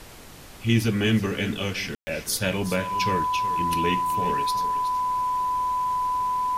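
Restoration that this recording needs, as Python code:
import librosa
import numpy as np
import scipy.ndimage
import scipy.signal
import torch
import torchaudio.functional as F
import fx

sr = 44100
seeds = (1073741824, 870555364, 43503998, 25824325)

y = fx.notch(x, sr, hz=1000.0, q=30.0)
y = fx.fix_ambience(y, sr, seeds[0], print_start_s=0.04, print_end_s=0.54, start_s=1.95, end_s=2.07)
y = fx.noise_reduce(y, sr, print_start_s=0.04, print_end_s=0.54, reduce_db=28.0)
y = fx.fix_echo_inverse(y, sr, delay_ms=371, level_db=-12.5)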